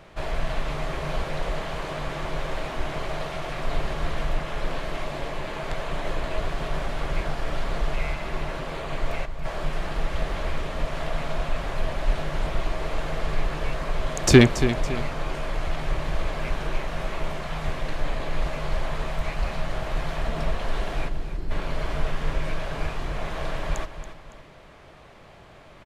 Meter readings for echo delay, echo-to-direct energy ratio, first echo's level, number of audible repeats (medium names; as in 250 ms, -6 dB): 280 ms, -10.5 dB, -11.0 dB, 2